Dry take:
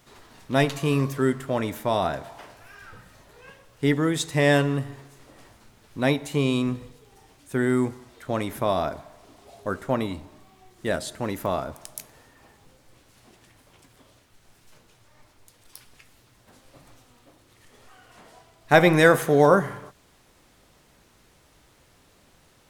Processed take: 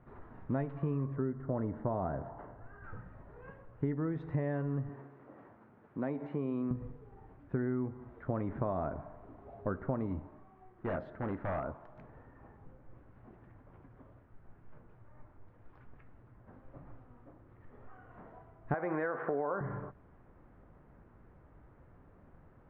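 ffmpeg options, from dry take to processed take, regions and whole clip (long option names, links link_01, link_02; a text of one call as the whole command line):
ffmpeg -i in.wav -filter_complex "[0:a]asettb=1/sr,asplit=3[link_01][link_02][link_03];[link_01]atrim=end=1.164[link_04];[link_02]atrim=start=1.16:end=2.84,asetpts=PTS-STARTPTS,afade=type=in:duration=0.004:curve=qsin,afade=type=out:start_time=1.676:duration=0.004:curve=qsin,asuperstop=centerf=2400:order=4:qfactor=7.5,highshelf=frequency=2000:gain=-11[link_05];[link_03]atrim=start=2.836[link_06];[link_04][link_05]acrossfade=duration=0.004:curve1=hsin:curve2=qsin[link_07];[link_07][link_06]acrossfade=duration=0.004:curve1=qsin:curve2=hsin,asettb=1/sr,asplit=3[link_08][link_09][link_10];[link_08]atrim=end=4.894[link_11];[link_09]atrim=start=4.89:end=6.71,asetpts=PTS-STARTPTS,afade=type=in:duration=0.004:curve=qsin,afade=type=out:start_time=1.816:duration=0.004:curve=qsin,acompressor=threshold=-32dB:ratio=2:attack=3.2:release=140:knee=1:detection=peak,highpass=200[link_12];[link_10]atrim=start=6.706[link_13];[link_11][link_12]acrossfade=duration=0.004:curve1=hsin:curve2=qsin[link_14];[link_14][link_13]acrossfade=duration=0.004:curve1=qsin:curve2=hsin,asettb=1/sr,asplit=3[link_15][link_16][link_17];[link_15]atrim=end=10.194[link_18];[link_16]atrim=start=10.19:end=11.96,asetpts=PTS-STARTPTS,afade=type=in:duration=0.004:curve=qsin,afade=type=out:start_time=1.766:duration=0.004:curve=qsin,aeval=exprs='0.0668*(abs(mod(val(0)/0.0668+3,4)-2)-1)':channel_layout=same,lowshelf=frequency=320:gain=-8[link_19];[link_17]atrim=start=11.956[link_20];[link_18][link_19]acrossfade=duration=0.004:curve1=hsin:curve2=qsin[link_21];[link_21][link_20]acrossfade=duration=0.004:curve1=qsin:curve2=hsin,asettb=1/sr,asplit=3[link_22][link_23][link_24];[link_22]atrim=end=18.744[link_25];[link_23]atrim=start=18.74:end=19.61,asetpts=PTS-STARTPTS,afade=type=in:duration=0.004:curve=qsin,afade=type=out:start_time=0.866:duration=0.004:curve=qsin,highpass=330,lowpass=3000,equalizer=frequency=1400:width=0.6:gain=5.5,acompressor=threshold=-17dB:ratio=3:attack=3.2:release=140:knee=1:detection=peak[link_26];[link_24]atrim=start=19.606[link_27];[link_25][link_26]acrossfade=duration=0.004:curve1=hsin:curve2=qsin[link_28];[link_28][link_27]acrossfade=duration=0.004:curve1=qsin:curve2=hsin,lowpass=frequency=1600:width=0.5412,lowpass=frequency=1600:width=1.3066,lowshelf=frequency=280:gain=8,acompressor=threshold=-26dB:ratio=12,volume=-4dB" out.wav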